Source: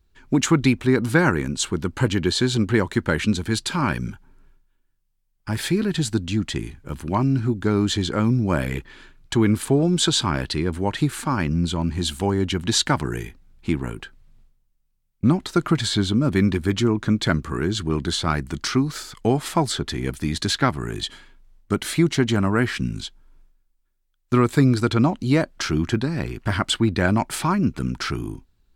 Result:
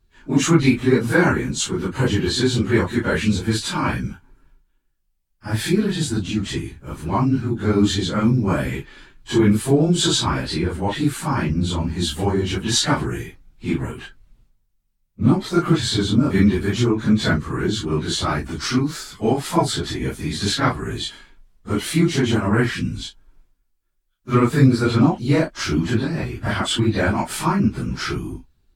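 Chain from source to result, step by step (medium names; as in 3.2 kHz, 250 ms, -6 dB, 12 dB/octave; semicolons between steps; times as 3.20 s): phase randomisation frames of 100 ms; trim +1.5 dB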